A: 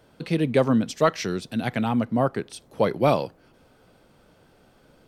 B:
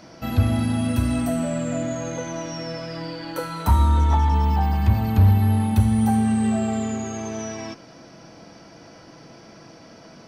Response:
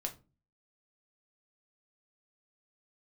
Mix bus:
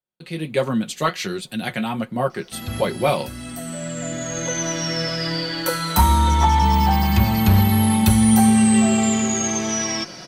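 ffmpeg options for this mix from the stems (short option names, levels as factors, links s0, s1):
-filter_complex "[0:a]agate=range=0.0282:threshold=0.00316:ratio=16:detection=peak,equalizer=f=5500:w=4.8:g=-12,flanger=delay=6.6:depth=7.8:regen=-46:speed=1.4:shape=triangular,volume=0.501,asplit=2[s0][s1];[1:a]adelay=2300,volume=0.668[s2];[s1]apad=whole_len=554572[s3];[s2][s3]sidechaincompress=threshold=0.00631:ratio=6:attack=27:release=1240[s4];[s0][s4]amix=inputs=2:normalize=0,highshelf=f=2100:g=11,aecho=1:1:5.5:0.48,dynaudnorm=f=110:g=9:m=2.51"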